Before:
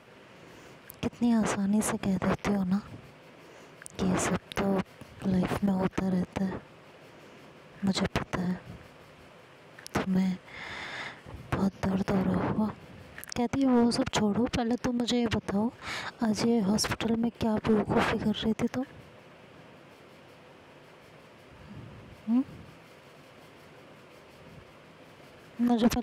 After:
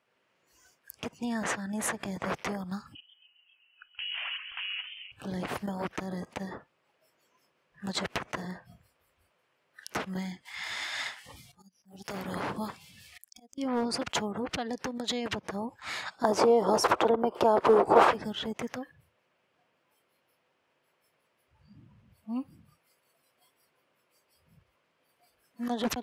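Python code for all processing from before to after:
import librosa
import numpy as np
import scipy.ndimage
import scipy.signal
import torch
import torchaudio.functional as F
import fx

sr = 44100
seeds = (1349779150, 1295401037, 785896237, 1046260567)

y = fx.chain(x, sr, fx.peak_eq(hz=1800.0, db=9.5, octaves=0.21),
    fx.notch(hz=400.0, q=11.0), at=(1.35, 2.03))
y = fx.chain(y, sr, fx.freq_invert(carrier_hz=3100),
    fx.level_steps(step_db=12),
    fx.echo_warbled(ms=133, feedback_pct=76, rate_hz=2.8, cents=134, wet_db=-10), at=(2.95, 5.12))
y = fx.chain(y, sr, fx.high_shelf(hz=3100.0, db=12.0),
    fx.auto_swell(attack_ms=574.0), at=(10.45, 13.58))
y = fx.chain(y, sr, fx.band_shelf(hz=640.0, db=12.5, octaves=2.3),
    fx.band_squash(depth_pct=40), at=(16.24, 18.11))
y = fx.noise_reduce_blind(y, sr, reduce_db=18)
y = fx.low_shelf(y, sr, hz=380.0, db=-11.5)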